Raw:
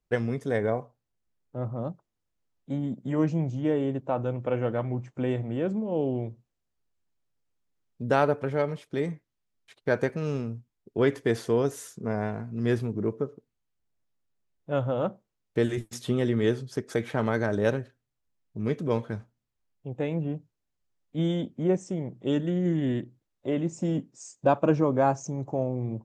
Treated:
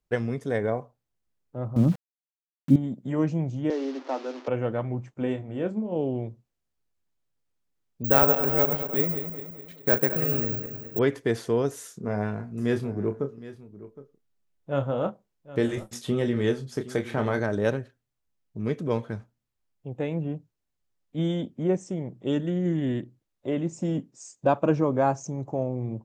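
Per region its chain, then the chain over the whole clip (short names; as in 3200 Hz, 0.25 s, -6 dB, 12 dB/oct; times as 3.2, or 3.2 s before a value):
1.76–2.76 resonant low shelf 390 Hz +13 dB, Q 1.5 + sample gate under -37 dBFS
3.7–4.48 delta modulation 32 kbps, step -36.5 dBFS + rippled Chebyshev high-pass 250 Hz, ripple 3 dB
5.14–5.96 doubler 28 ms -8 dB + upward expander, over -39 dBFS
8.04–10.99 regenerating reverse delay 0.105 s, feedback 71%, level -9 dB + careless resampling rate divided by 2×, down filtered, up zero stuff
11.81–17.4 doubler 29 ms -8.5 dB + echo 0.765 s -16.5 dB
whole clip: dry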